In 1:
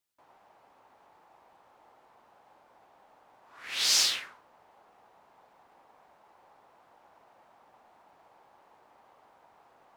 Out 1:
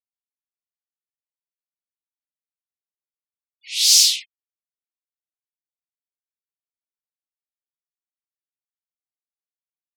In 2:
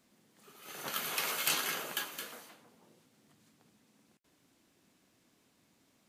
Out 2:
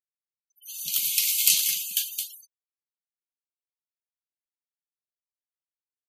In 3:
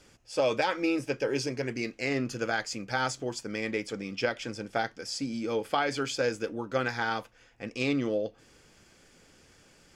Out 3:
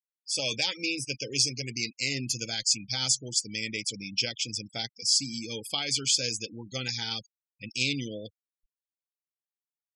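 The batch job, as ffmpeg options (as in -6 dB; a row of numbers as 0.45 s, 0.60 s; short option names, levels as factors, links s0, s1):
-af "aexciter=amount=7.2:drive=8.1:freq=2300,bass=f=250:g=14,treble=f=4000:g=3,afftfilt=real='re*gte(hypot(re,im),0.0631)':imag='im*gte(hypot(re,im),0.0631)':win_size=1024:overlap=0.75,volume=0.251"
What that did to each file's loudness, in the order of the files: +12.0 LU, +12.0 LU, +2.5 LU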